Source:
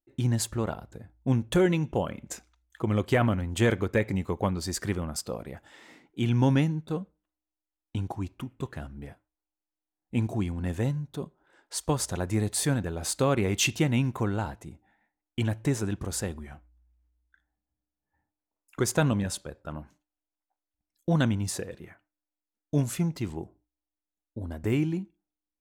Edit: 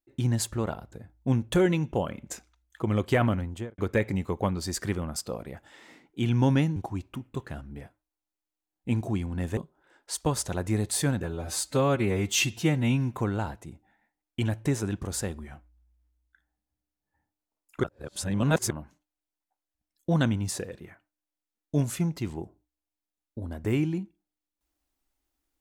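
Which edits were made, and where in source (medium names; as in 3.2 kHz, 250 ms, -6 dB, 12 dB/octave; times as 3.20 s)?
3.35–3.78 s: studio fade out
6.76–8.02 s: delete
10.83–11.20 s: delete
12.86–14.13 s: stretch 1.5×
18.83–19.70 s: reverse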